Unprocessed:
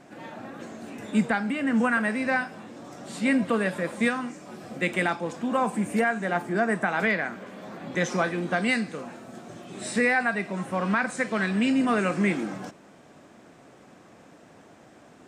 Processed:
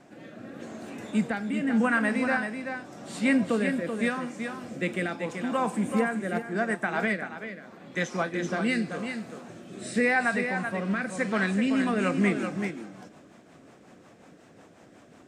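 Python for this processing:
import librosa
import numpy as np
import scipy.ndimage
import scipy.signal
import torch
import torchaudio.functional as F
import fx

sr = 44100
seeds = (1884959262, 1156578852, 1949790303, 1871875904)

y = fx.rotary_switch(x, sr, hz=0.85, then_hz=5.5, switch_at_s=11.26)
y = y + 10.0 ** (-7.0 / 20.0) * np.pad(y, (int(383 * sr / 1000.0), 0))[:len(y)]
y = fx.upward_expand(y, sr, threshold_db=-37.0, expansion=1.5, at=(6.38, 8.34))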